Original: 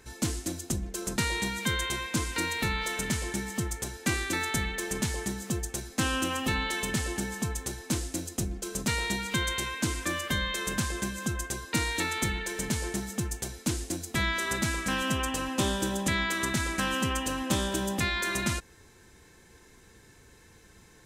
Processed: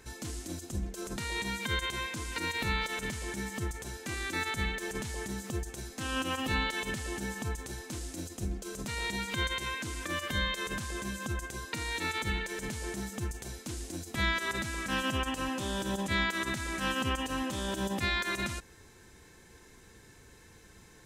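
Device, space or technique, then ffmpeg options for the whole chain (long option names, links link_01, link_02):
de-esser from a sidechain: -filter_complex "[0:a]asplit=2[link_01][link_02];[link_02]highpass=frequency=5900:width=0.5412,highpass=frequency=5900:width=1.3066,apad=whole_len=928582[link_03];[link_01][link_03]sidechaincompress=threshold=-45dB:ratio=5:attack=2.9:release=28"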